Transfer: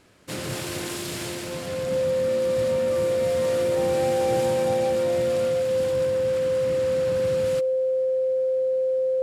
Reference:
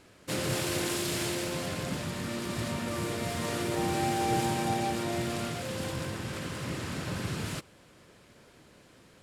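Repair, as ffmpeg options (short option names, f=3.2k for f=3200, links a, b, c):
-af "bandreject=f=520:w=30"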